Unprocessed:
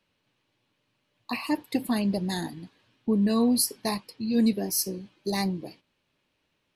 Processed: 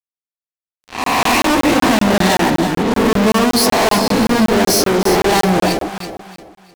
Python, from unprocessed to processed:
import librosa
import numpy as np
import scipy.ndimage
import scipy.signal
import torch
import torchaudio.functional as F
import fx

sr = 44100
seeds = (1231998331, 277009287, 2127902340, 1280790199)

y = fx.spec_swells(x, sr, rise_s=0.73)
y = fx.bandpass_q(y, sr, hz=910.0, q=0.64)
y = fx.spec_gate(y, sr, threshold_db=-25, keep='strong')
y = fx.fuzz(y, sr, gain_db=56.0, gate_db=-57.0)
y = fx.echo_alternate(y, sr, ms=164, hz=830.0, feedback_pct=57, wet_db=-4.0)
y = fx.buffer_crackle(y, sr, first_s=0.66, period_s=0.19, block=1024, kind='zero')